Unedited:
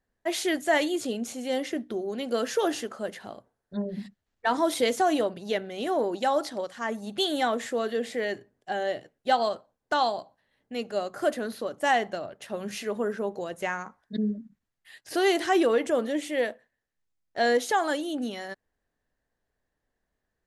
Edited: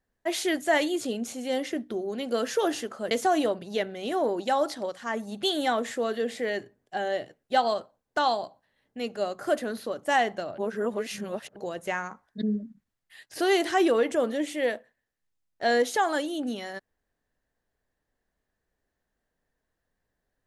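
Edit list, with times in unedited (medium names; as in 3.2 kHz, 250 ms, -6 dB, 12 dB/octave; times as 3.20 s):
3.11–4.86 s: delete
12.33–13.31 s: reverse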